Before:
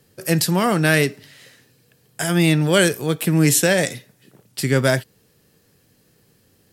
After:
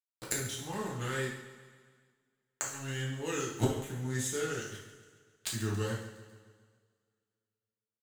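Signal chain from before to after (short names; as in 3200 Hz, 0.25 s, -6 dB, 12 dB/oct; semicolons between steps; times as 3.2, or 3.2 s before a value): ripple EQ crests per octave 1, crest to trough 8 dB; wow and flutter 120 cents; wide varispeed 0.838×; crossover distortion -30 dBFS; flipped gate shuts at -16 dBFS, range -24 dB; feedback echo 0.138 s, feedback 59%, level -15 dB; two-slope reverb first 0.58 s, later 2.6 s, from -27 dB, DRR -4.5 dB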